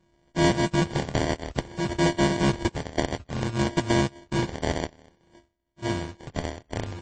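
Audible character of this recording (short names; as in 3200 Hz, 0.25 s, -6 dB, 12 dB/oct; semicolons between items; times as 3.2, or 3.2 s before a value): a buzz of ramps at a fixed pitch in blocks of 128 samples; phasing stages 2, 0.57 Hz, lowest notch 210–4600 Hz; aliases and images of a low sample rate 1300 Hz, jitter 0%; MP3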